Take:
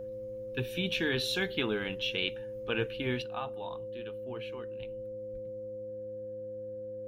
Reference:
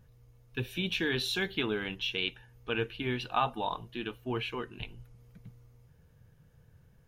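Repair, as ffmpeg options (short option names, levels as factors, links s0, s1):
-filter_complex "[0:a]bandreject=f=108:t=h:w=4,bandreject=f=216:t=h:w=4,bandreject=f=324:t=h:w=4,bandreject=f=520:w=30,asplit=3[s0][s1][s2];[s0]afade=t=out:st=5.32:d=0.02[s3];[s1]highpass=f=140:w=0.5412,highpass=f=140:w=1.3066,afade=t=in:st=5.32:d=0.02,afade=t=out:st=5.44:d=0.02[s4];[s2]afade=t=in:st=5.44:d=0.02[s5];[s3][s4][s5]amix=inputs=3:normalize=0,asetnsamples=n=441:p=0,asendcmd='3.22 volume volume 10dB',volume=1"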